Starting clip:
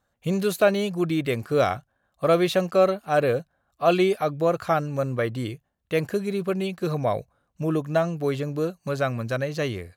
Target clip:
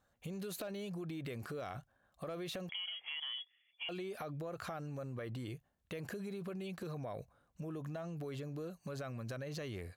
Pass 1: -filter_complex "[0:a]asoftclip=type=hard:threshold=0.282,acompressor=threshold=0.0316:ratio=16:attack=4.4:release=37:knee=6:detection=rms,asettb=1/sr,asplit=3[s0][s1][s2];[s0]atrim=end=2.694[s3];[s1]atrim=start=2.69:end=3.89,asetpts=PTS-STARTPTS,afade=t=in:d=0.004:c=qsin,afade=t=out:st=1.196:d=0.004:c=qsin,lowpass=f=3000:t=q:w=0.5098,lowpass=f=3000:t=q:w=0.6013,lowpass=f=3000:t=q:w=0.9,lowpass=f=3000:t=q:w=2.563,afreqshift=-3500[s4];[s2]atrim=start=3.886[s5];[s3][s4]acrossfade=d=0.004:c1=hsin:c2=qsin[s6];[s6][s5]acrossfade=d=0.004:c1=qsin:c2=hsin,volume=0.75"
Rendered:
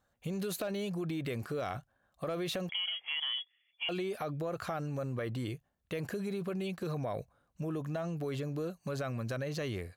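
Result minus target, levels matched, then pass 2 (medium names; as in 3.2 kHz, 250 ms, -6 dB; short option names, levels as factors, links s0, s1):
compression: peak gain reduction -7 dB
-filter_complex "[0:a]asoftclip=type=hard:threshold=0.282,acompressor=threshold=0.0133:ratio=16:attack=4.4:release=37:knee=6:detection=rms,asettb=1/sr,asplit=3[s0][s1][s2];[s0]atrim=end=2.694[s3];[s1]atrim=start=2.69:end=3.89,asetpts=PTS-STARTPTS,afade=t=in:d=0.004:c=qsin,afade=t=out:st=1.196:d=0.004:c=qsin,lowpass=f=3000:t=q:w=0.5098,lowpass=f=3000:t=q:w=0.6013,lowpass=f=3000:t=q:w=0.9,lowpass=f=3000:t=q:w=2.563,afreqshift=-3500[s4];[s2]atrim=start=3.886[s5];[s3][s4]acrossfade=d=0.004:c1=hsin:c2=qsin[s6];[s6][s5]acrossfade=d=0.004:c1=qsin:c2=hsin,volume=0.75"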